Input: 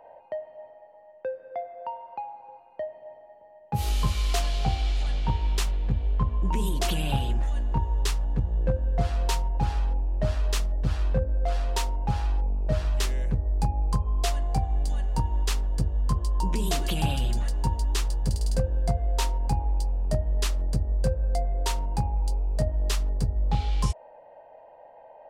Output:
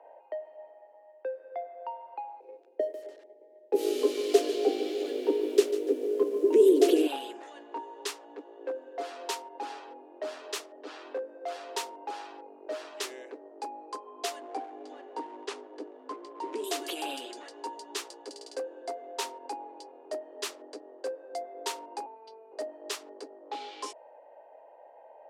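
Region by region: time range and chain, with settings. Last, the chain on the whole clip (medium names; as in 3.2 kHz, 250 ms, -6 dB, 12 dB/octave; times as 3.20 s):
2.40–7.07 s: companding laws mixed up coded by A + resonant low shelf 630 Hz +13 dB, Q 3 + bit-crushed delay 146 ms, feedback 35%, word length 7-bit, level -13 dB
14.40–16.64 s: tilt EQ -2.5 dB/octave + hysteresis with a dead band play -39.5 dBFS + careless resampling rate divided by 2×, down none, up filtered
22.06–22.52 s: Savitzky-Golay filter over 15 samples + robot voice 223 Hz
whole clip: steep high-pass 270 Hz 96 dB/octave; peaking EQ 410 Hz +5.5 dB 0.24 oct; level-controlled noise filter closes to 2.9 kHz, open at -28 dBFS; trim -3.5 dB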